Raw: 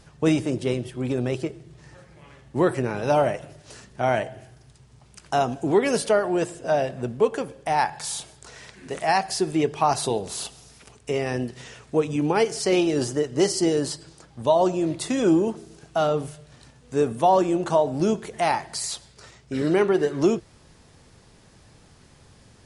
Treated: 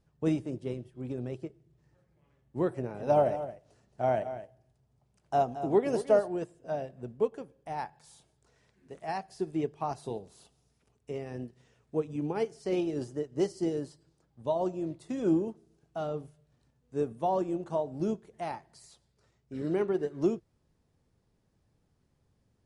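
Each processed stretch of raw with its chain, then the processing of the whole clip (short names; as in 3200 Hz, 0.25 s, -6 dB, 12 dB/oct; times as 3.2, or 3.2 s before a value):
2.72–6.28 bell 670 Hz +6.5 dB 0.78 oct + echo 0.222 s -8.5 dB
whole clip: tilt shelf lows +5 dB, about 820 Hz; upward expander 1.5:1, over -37 dBFS; gain -9 dB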